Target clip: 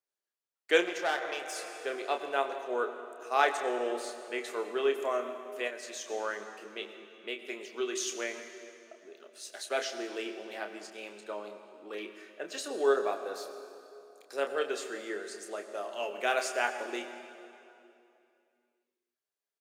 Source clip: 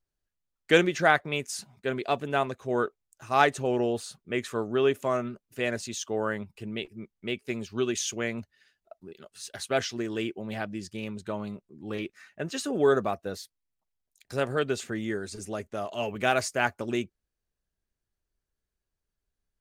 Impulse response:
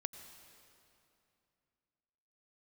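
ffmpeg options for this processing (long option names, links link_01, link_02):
-filter_complex "[1:a]atrim=start_sample=2205[link_01];[0:a][link_01]afir=irnorm=-1:irlink=0,asplit=3[link_02][link_03][link_04];[link_02]afade=type=out:start_time=0.79:duration=0.02[link_05];[link_03]aeval=exprs='(tanh(12.6*val(0)+0.6)-tanh(0.6))/12.6':channel_layout=same,afade=type=in:start_time=0.79:duration=0.02,afade=type=out:start_time=1.55:duration=0.02[link_06];[link_04]afade=type=in:start_time=1.55:duration=0.02[link_07];[link_05][link_06][link_07]amix=inputs=3:normalize=0,asettb=1/sr,asplit=3[link_08][link_09][link_10];[link_08]atrim=end=5.674[link_11];[link_09]atrim=start=5.67:end=6.08,asetpts=PTS-STARTPTS,afade=type=in:duration=0.004:curve=qsin,afade=type=out:start_time=0.406:duration=0.004:curve=qsin,acompressor=threshold=-35dB:ratio=6[link_12];[link_10]atrim=start=6.076[link_13];[link_11][link_12]acrossfade=duration=0.004:curve1=hsin:curve2=qsin[link_14];[link_14][link_13]acrossfade=duration=0.004:curve1=qsin:curve2=hsin,highpass=frequency=360:width=0.5412,highpass=frequency=360:width=1.3066,asplit=2[link_15][link_16];[link_16]adelay=29,volume=-7.5dB[link_17];[link_15][link_17]amix=inputs=2:normalize=0,volume=-2dB"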